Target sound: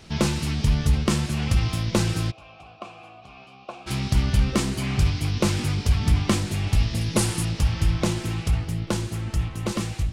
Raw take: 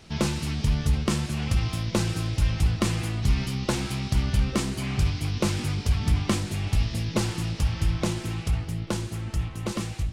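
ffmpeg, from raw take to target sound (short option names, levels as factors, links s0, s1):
-filter_complex "[0:a]asplit=3[s0][s1][s2];[s0]afade=t=out:st=2.3:d=0.02[s3];[s1]asplit=3[s4][s5][s6];[s4]bandpass=f=730:t=q:w=8,volume=1[s7];[s5]bandpass=f=1090:t=q:w=8,volume=0.501[s8];[s6]bandpass=f=2440:t=q:w=8,volume=0.355[s9];[s7][s8][s9]amix=inputs=3:normalize=0,afade=t=in:st=2.3:d=0.02,afade=t=out:st=3.86:d=0.02[s10];[s2]afade=t=in:st=3.86:d=0.02[s11];[s3][s10][s11]amix=inputs=3:normalize=0,asettb=1/sr,asplit=3[s12][s13][s14];[s12]atrim=end=7.014[s15];[s13]atrim=start=7.01:end=7.45,asetpts=PTS-STARTPTS,afade=t=in:d=0.004:c=qsin,afade=t=out:st=0.436:d=0.004:c=qsin,equalizer=f=10000:t=o:w=0.69:g=12[s16];[s14]atrim=start=7.446[s17];[s15][s16]acrossfade=d=0.004:c1=hsin:c2=qsin[s18];[s18][s17]acrossfade=d=0.004:c1=qsin:c2=hsin,volume=1.41"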